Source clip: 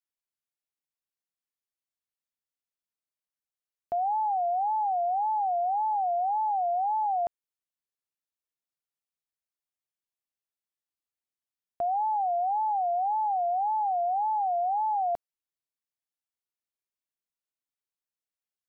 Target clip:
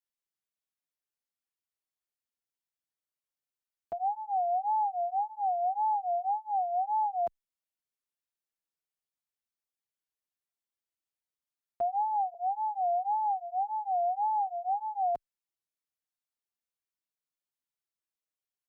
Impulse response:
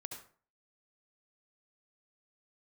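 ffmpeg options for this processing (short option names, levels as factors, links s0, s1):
-filter_complex "[0:a]asettb=1/sr,asplit=3[s0][s1][s2];[s0]atrim=end=12.344[s3];[s1]atrim=start=12.34:end=14.47,asetpts=PTS-STARTPTS,afade=t=in:d=0.004:c=qsin,afade=t=out:st=2.126:d=0.004:c=qsin,highpass=f=240:p=1[s4];[s2]atrim=start=14.466[s5];[s3][s4]acrossfade=d=0.004:c1=hsin:c2=qsin[s6];[s6][s5]acrossfade=d=0.004:c1=qsin:c2=hsin,asplit=2[s7][s8];[s8]adelay=5.3,afreqshift=-0.85[s9];[s7][s9]amix=inputs=2:normalize=1"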